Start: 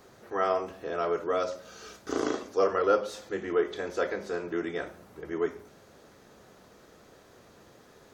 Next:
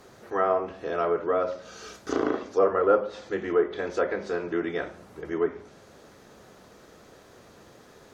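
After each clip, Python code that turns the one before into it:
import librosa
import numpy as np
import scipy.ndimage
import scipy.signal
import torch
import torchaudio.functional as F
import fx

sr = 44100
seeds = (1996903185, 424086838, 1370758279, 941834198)

y = fx.env_lowpass_down(x, sr, base_hz=1600.0, full_db=-23.5)
y = F.gain(torch.from_numpy(y), 3.5).numpy()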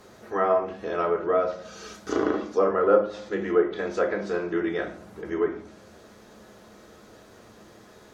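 y = fx.rev_fdn(x, sr, rt60_s=0.47, lf_ratio=1.35, hf_ratio=0.8, size_ms=28.0, drr_db=5.5)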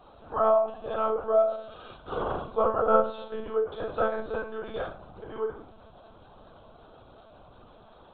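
y = fx.fixed_phaser(x, sr, hz=810.0, stages=4)
y = fx.doubler(y, sr, ms=42.0, db=-5.5)
y = fx.lpc_monotone(y, sr, seeds[0], pitch_hz=220.0, order=16)
y = F.gain(torch.from_numpy(y), 1.5).numpy()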